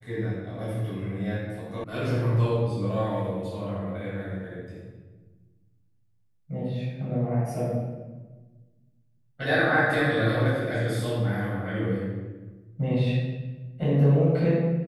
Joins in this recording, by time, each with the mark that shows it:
1.84 s: sound stops dead

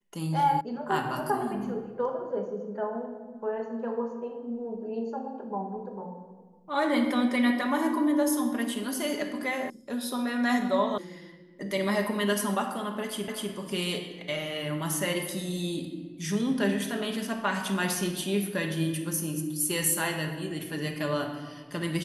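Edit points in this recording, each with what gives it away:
0.61 s: sound stops dead
9.70 s: sound stops dead
10.98 s: sound stops dead
13.28 s: repeat of the last 0.25 s

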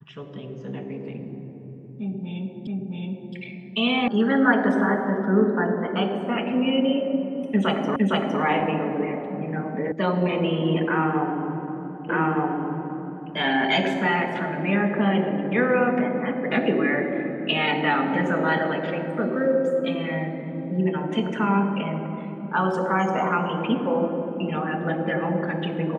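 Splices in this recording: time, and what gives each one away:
2.67 s: repeat of the last 0.67 s
4.08 s: sound stops dead
7.96 s: repeat of the last 0.46 s
9.92 s: sound stops dead
12.09 s: repeat of the last 1.22 s

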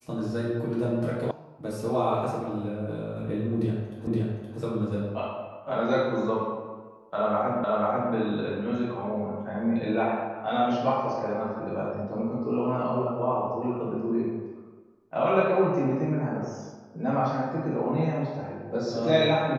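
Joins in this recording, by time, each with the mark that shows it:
1.31 s: sound stops dead
4.07 s: repeat of the last 0.52 s
7.64 s: repeat of the last 0.49 s

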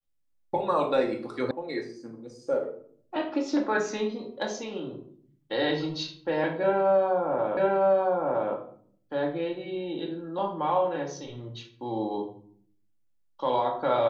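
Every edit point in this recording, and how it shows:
1.51 s: sound stops dead
7.57 s: repeat of the last 0.96 s

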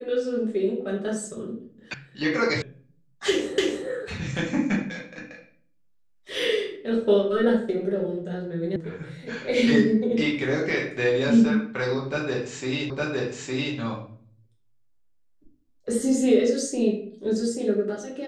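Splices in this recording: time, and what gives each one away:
1.94 s: sound stops dead
2.62 s: sound stops dead
3.58 s: repeat of the last 0.29 s
8.76 s: sound stops dead
12.90 s: repeat of the last 0.86 s

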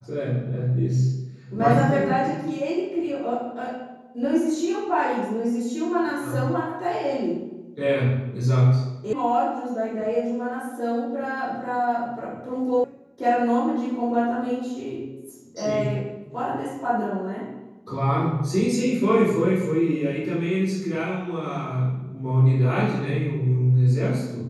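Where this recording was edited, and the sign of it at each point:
9.13 s: sound stops dead
12.84 s: sound stops dead

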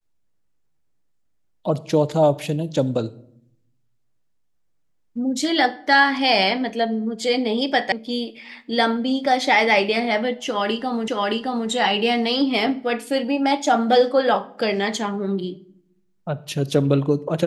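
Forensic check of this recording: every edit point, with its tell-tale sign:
7.92 s: sound stops dead
11.08 s: repeat of the last 0.62 s

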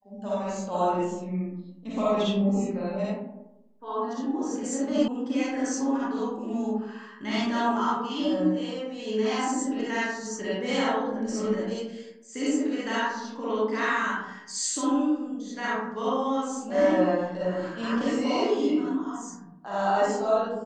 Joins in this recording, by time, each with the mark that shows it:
5.08 s: sound stops dead

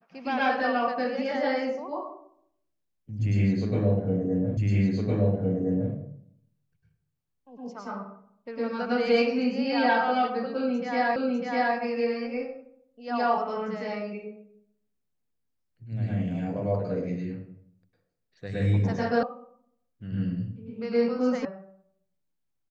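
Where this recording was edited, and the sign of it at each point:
4.57 s: repeat of the last 1.36 s
11.16 s: repeat of the last 0.6 s
19.23 s: sound stops dead
21.45 s: sound stops dead

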